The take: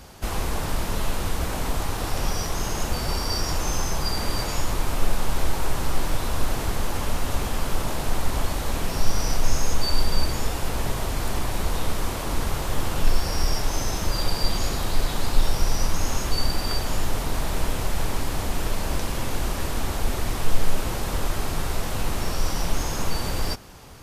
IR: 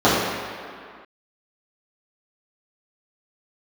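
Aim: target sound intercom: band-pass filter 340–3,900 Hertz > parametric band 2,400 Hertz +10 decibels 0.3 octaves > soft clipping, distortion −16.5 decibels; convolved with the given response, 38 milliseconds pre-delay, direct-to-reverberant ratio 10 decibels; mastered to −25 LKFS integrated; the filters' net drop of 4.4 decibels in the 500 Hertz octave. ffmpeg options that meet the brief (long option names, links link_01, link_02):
-filter_complex "[0:a]equalizer=frequency=500:width_type=o:gain=-4.5,asplit=2[link_01][link_02];[1:a]atrim=start_sample=2205,adelay=38[link_03];[link_02][link_03]afir=irnorm=-1:irlink=0,volume=-36dB[link_04];[link_01][link_04]amix=inputs=2:normalize=0,highpass=340,lowpass=3900,equalizer=frequency=2400:width_type=o:width=0.3:gain=10,asoftclip=threshold=-28dB,volume=8.5dB"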